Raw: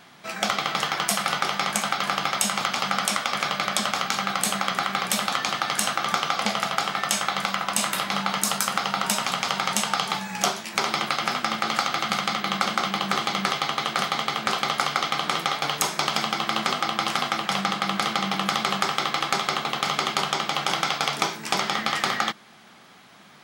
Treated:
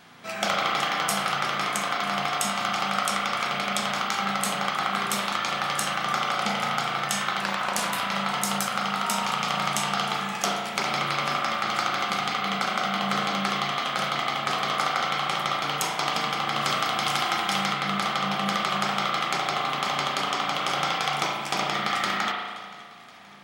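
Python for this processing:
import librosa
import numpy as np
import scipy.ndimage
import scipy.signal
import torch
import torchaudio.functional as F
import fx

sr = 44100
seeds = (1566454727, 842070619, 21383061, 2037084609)

p1 = x + fx.echo_feedback(x, sr, ms=524, feedback_pct=57, wet_db=-20.5, dry=0)
p2 = fx.rider(p1, sr, range_db=4, speed_s=2.0)
p3 = fx.high_shelf(p2, sr, hz=4700.0, db=7.5, at=(16.61, 17.72))
p4 = fx.rev_spring(p3, sr, rt60_s=1.5, pass_ms=(35,), chirp_ms=70, drr_db=-1.5)
p5 = fx.doppler_dist(p4, sr, depth_ms=0.39, at=(7.41, 7.92))
y = p5 * librosa.db_to_amplitude(-4.5)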